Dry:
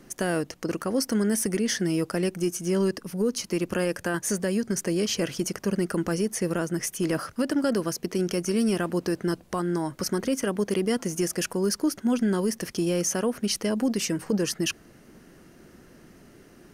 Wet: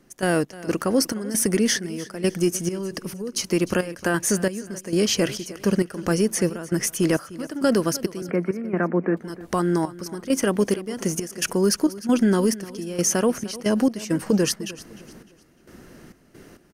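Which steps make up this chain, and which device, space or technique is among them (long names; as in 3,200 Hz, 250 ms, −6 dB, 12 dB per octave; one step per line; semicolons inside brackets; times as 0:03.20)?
0:08.22–0:09.17: Chebyshev band-pass filter 170–2,300 Hz, order 5
trance gate with a delay (gate pattern ".x.xx.xx..xx" 67 BPM −12 dB; repeating echo 303 ms, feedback 35%, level −18 dB)
level +5.5 dB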